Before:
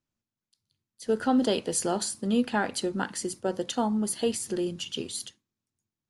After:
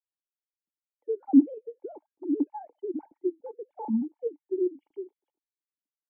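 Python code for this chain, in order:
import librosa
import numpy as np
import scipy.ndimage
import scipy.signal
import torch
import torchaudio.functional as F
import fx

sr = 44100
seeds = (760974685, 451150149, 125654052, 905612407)

y = fx.sine_speech(x, sr)
y = fx.transient(y, sr, attack_db=2, sustain_db=-6)
y = fx.formant_cascade(y, sr, vowel='u')
y = y * 10.0 ** (5.0 / 20.0)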